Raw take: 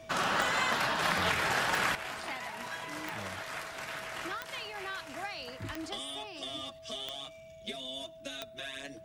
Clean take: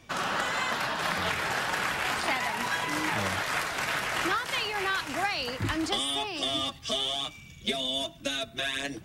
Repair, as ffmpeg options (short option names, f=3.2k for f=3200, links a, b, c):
-af "adeclick=t=4,bandreject=f=650:w=30,asetnsamples=n=441:p=0,asendcmd='1.95 volume volume 10.5dB',volume=0dB"